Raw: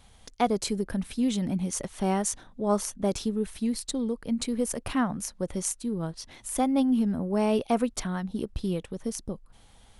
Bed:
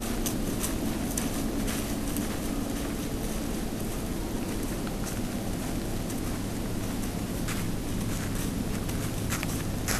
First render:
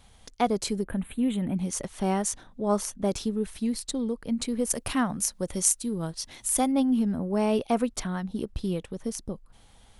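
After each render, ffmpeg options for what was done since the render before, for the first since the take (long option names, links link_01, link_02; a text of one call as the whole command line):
ffmpeg -i in.wav -filter_complex "[0:a]asettb=1/sr,asplit=3[link_01][link_02][link_03];[link_01]atrim=end=0.854[link_04];[link_02]atrim=start=0.85:end=1.56,asetpts=PTS-STARTPTS,afade=type=in:duration=0.004:curve=qsin,afade=type=out:start_time=0.706:duration=0.004:curve=qsin,asuperstop=centerf=5400:order=4:qfactor=0.98[link_05];[link_03]atrim=start=1.556[link_06];[link_04][link_05]acrossfade=duration=0.004:curve1=hsin:curve2=qsin[link_07];[link_07][link_06]acrossfade=duration=0.004:curve1=qsin:curve2=hsin,asettb=1/sr,asplit=3[link_08][link_09][link_10];[link_08]atrim=end=4.704[link_11];[link_09]atrim=start=4.7:end=6.72,asetpts=PTS-STARTPTS,afade=type=in:duration=0.004:curve=qsin,afade=type=out:start_time=2.016:duration=0.004:curve=qsin,highshelf=frequency=3900:gain=9.5[link_12];[link_10]atrim=start=6.716[link_13];[link_11][link_12]acrossfade=duration=0.004:curve1=hsin:curve2=qsin[link_14];[link_14][link_13]acrossfade=duration=0.004:curve1=qsin:curve2=hsin" out.wav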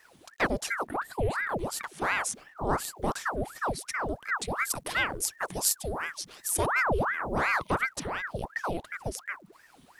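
ffmpeg -i in.wav -af "acrusher=bits=10:mix=0:aa=0.000001,aeval=exprs='val(0)*sin(2*PI*1000*n/s+1000*0.85/2.8*sin(2*PI*2.8*n/s))':channel_layout=same" out.wav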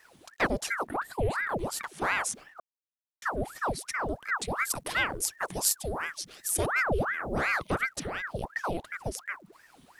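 ffmpeg -i in.wav -filter_complex "[0:a]asettb=1/sr,asplit=3[link_01][link_02][link_03];[link_01]atrim=end=6.134[link_04];[link_02]atrim=start=6.13:end=8.27,asetpts=PTS-STARTPTS,afade=type=in:duration=0.004:curve=qsin,afade=type=out:start_time=2.136:duration=0.004:curve=qsin,equalizer=frequency=980:width=3.6:gain=-9.5[link_05];[link_03]atrim=start=8.266[link_06];[link_04][link_05]acrossfade=duration=0.004:curve1=hsin:curve2=qsin[link_07];[link_07][link_06]acrossfade=duration=0.004:curve1=qsin:curve2=hsin,asplit=3[link_08][link_09][link_10];[link_08]atrim=end=2.6,asetpts=PTS-STARTPTS,afade=type=out:start_time=2.596:duration=0.004:curve=hsin[link_11];[link_09]atrim=start=2.6:end=3.22,asetpts=PTS-STARTPTS,volume=0[link_12];[link_10]atrim=start=3.22,asetpts=PTS-STARTPTS,afade=type=in:duration=0.004:curve=hsin[link_13];[link_11][link_12][link_13]concat=n=3:v=0:a=1" out.wav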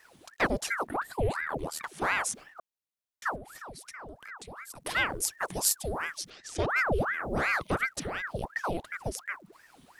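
ffmpeg -i in.wav -filter_complex "[0:a]asettb=1/sr,asplit=3[link_01][link_02][link_03];[link_01]atrim=end=1.324[link_04];[link_02]atrim=start=1.32:end=1.84,asetpts=PTS-STARTPTS,afade=type=in:duration=0.004:curve=qsin,afade=type=out:start_time=0.516:duration=0.004:curve=qsin,aeval=exprs='val(0)*sin(2*PI*39*n/s)':channel_layout=same[link_05];[link_03]atrim=start=1.836[link_06];[link_04][link_05]acrossfade=duration=0.004:curve1=hsin:curve2=qsin[link_07];[link_07][link_06]acrossfade=duration=0.004:curve1=qsin:curve2=hsin,asplit=3[link_08][link_09][link_10];[link_08]afade=type=out:start_time=3.35:duration=0.02[link_11];[link_09]acompressor=threshold=-42dB:ratio=5:attack=3.2:release=140:knee=1:detection=peak,afade=type=in:start_time=3.35:duration=0.02,afade=type=out:start_time=4.83:duration=0.02[link_12];[link_10]afade=type=in:start_time=4.83:duration=0.02[link_13];[link_11][link_12][link_13]amix=inputs=3:normalize=0,asettb=1/sr,asplit=3[link_14][link_15][link_16];[link_14]atrim=end=6.304[link_17];[link_15]atrim=start=6.3:end=6.7,asetpts=PTS-STARTPTS,afade=type=in:duration=0.004:curve=qsin,afade=type=out:start_time=0.396:duration=0.004:curve=qsin,lowpass=frequency=5800:width=0.5412,lowpass=frequency=5800:width=1.3066[link_18];[link_16]atrim=start=6.696[link_19];[link_17][link_18]acrossfade=duration=0.004:curve1=hsin:curve2=qsin[link_20];[link_20][link_19]acrossfade=duration=0.004:curve1=qsin:curve2=hsin" out.wav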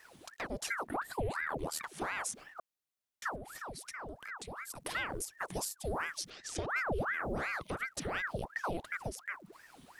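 ffmpeg -i in.wav -af "acompressor=threshold=-30dB:ratio=6,alimiter=level_in=1dB:limit=-24dB:level=0:latency=1:release=198,volume=-1dB" out.wav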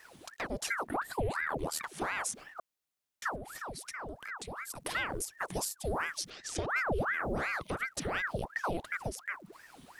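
ffmpeg -i in.wav -af "volume=2.5dB" out.wav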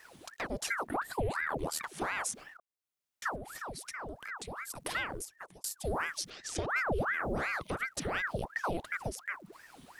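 ffmpeg -i in.wav -filter_complex "[0:a]asplit=3[link_01][link_02][link_03];[link_01]atrim=end=2.57,asetpts=PTS-STARTPTS,afade=type=out:start_time=2.566:duration=0.004:curve=hsin:silence=0.0668344[link_04];[link_02]atrim=start=2.57:end=5.64,asetpts=PTS-STARTPTS,afade=type=in:duration=0.67:silence=0.0668344,afade=type=out:start_time=2.35:duration=0.72[link_05];[link_03]atrim=start=5.64,asetpts=PTS-STARTPTS,afade=type=in:duration=0.004:curve=hsin[link_06];[link_04][link_05][link_06]concat=n=3:v=0:a=1" out.wav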